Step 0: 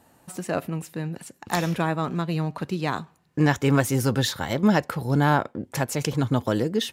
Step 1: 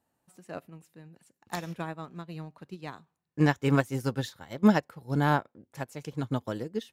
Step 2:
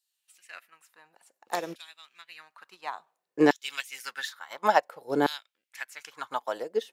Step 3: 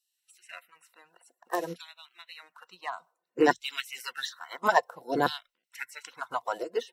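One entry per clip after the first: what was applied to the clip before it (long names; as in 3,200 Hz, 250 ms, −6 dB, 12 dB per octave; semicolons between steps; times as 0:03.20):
expander for the loud parts 2.5 to 1, over −29 dBFS
auto-filter high-pass saw down 0.57 Hz 360–4,300 Hz; level +2.5 dB
spectral magnitudes quantised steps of 30 dB; EQ curve with evenly spaced ripples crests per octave 2, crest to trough 7 dB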